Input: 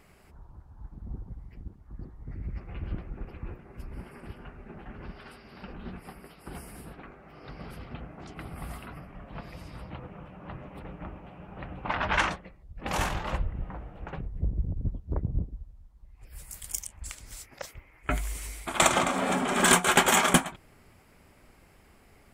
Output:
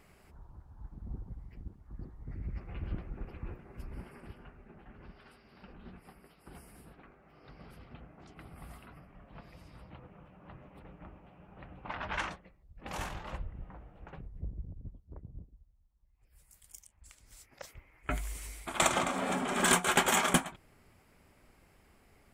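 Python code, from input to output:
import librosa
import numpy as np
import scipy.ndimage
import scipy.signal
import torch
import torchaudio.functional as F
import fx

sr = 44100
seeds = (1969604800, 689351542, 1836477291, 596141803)

y = fx.gain(x, sr, db=fx.line((3.94, -3.0), (4.75, -10.0), (14.39, -10.0), (15.15, -18.0), (16.98, -18.0), (17.75, -5.5)))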